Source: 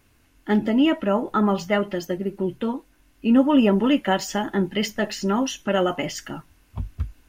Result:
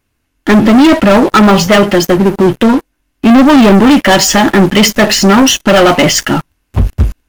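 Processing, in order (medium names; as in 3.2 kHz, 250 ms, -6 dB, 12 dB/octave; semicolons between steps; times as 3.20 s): waveshaping leveller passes 5; trim +5 dB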